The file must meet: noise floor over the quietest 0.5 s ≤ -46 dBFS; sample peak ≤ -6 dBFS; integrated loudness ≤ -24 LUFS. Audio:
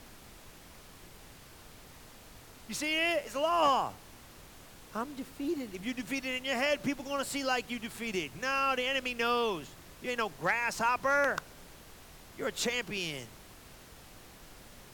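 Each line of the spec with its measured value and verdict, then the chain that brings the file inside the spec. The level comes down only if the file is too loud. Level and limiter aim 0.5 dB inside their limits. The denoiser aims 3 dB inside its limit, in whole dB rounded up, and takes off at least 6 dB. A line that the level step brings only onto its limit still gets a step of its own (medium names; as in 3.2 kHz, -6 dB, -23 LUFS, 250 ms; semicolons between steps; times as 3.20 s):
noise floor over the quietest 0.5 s -53 dBFS: pass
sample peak -17.5 dBFS: pass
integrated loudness -32.0 LUFS: pass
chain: none needed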